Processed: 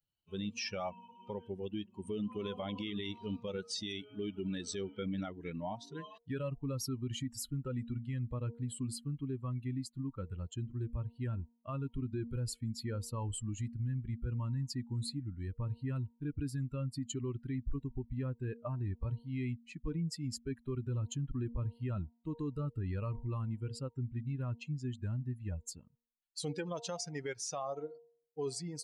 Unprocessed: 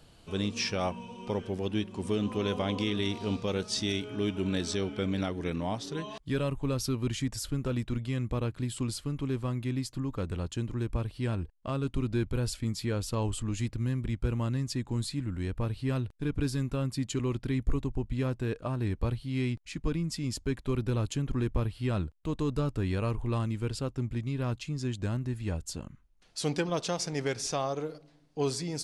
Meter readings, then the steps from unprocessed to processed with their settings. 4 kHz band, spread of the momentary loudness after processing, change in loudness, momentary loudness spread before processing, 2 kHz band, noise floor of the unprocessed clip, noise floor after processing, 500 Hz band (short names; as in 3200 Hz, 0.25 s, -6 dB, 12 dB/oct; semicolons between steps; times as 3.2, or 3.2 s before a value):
-8.0 dB, 4 LU, -7.0 dB, 4 LU, -9.5 dB, -58 dBFS, -73 dBFS, -8.5 dB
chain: per-bin expansion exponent 2; de-hum 234.4 Hz, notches 4; limiter -31 dBFS, peak gain reduction 11 dB; gain +1.5 dB